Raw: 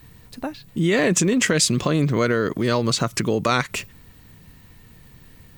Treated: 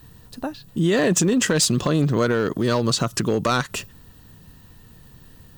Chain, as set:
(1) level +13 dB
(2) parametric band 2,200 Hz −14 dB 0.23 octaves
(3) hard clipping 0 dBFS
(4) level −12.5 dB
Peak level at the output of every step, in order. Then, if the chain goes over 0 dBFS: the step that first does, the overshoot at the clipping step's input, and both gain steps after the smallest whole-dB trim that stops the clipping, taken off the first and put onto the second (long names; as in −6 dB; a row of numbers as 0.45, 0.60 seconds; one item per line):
+7.5, +7.0, 0.0, −12.5 dBFS
step 1, 7.0 dB
step 1 +6 dB, step 4 −5.5 dB